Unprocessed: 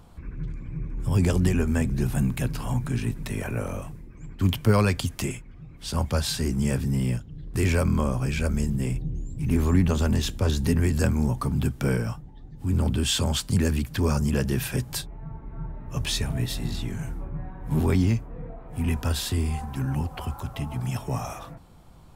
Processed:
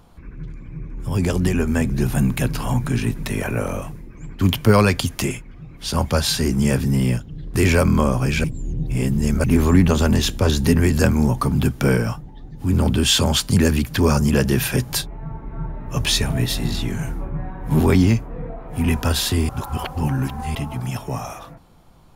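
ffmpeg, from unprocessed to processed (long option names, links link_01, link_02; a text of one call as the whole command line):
ffmpeg -i in.wav -filter_complex "[0:a]asplit=5[link_01][link_02][link_03][link_04][link_05];[link_01]atrim=end=8.442[link_06];[link_02]atrim=start=8.438:end=9.442,asetpts=PTS-STARTPTS,areverse[link_07];[link_03]atrim=start=9.438:end=19.492[link_08];[link_04]atrim=start=19.488:end=20.552,asetpts=PTS-STARTPTS,areverse[link_09];[link_05]atrim=start=20.548[link_10];[link_06][link_07]acrossfade=duration=0.004:curve1=hsin:curve2=hsin[link_11];[link_11][link_08]acrossfade=duration=0.004:curve1=hsin:curve2=hsin[link_12];[link_12][link_09]acrossfade=duration=0.004:curve1=hsin:curve2=hsin[link_13];[link_13][link_10]acrossfade=duration=0.004:curve1=hsin:curve2=hsin,equalizer=frequency=72:width_type=o:width=2.2:gain=-4.5,dynaudnorm=framelen=200:gausssize=17:maxgain=7dB,bandreject=frequency=8000:width=9.7,volume=2dB" out.wav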